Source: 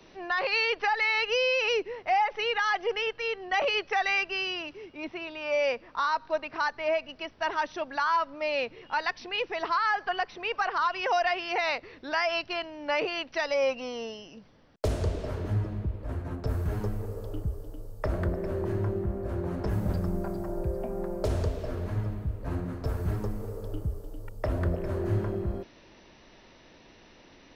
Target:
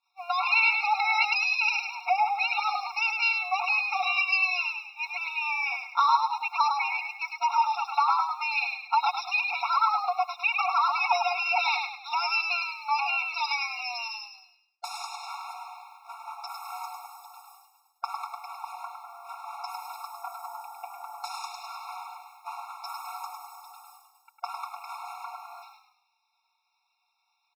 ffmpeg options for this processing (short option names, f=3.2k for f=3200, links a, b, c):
-filter_complex "[0:a]highpass=f=120:w=0.5412,highpass=f=120:w=1.3066,acompressor=threshold=-28dB:ratio=8,acrusher=bits=11:mix=0:aa=0.000001,superequalizer=7b=0.631:14b=2,agate=range=-33dB:threshold=-39dB:ratio=3:detection=peak,equalizer=f=500:w=3.5:g=3,bandreject=f=4.8k:w=16,aecho=1:1:4.4:0.75,asplit=6[a][b][c][d][e][f];[b]adelay=103,afreqshift=-41,volume=-5dB[g];[c]adelay=206,afreqshift=-82,volume=-13.2dB[h];[d]adelay=309,afreqshift=-123,volume=-21.4dB[i];[e]adelay=412,afreqshift=-164,volume=-29.5dB[j];[f]adelay=515,afreqshift=-205,volume=-37.7dB[k];[a][g][h][i][j][k]amix=inputs=6:normalize=0,afftfilt=real='re*eq(mod(floor(b*sr/1024/710),2),1)':imag='im*eq(mod(floor(b*sr/1024/710),2),1)':win_size=1024:overlap=0.75,volume=7dB"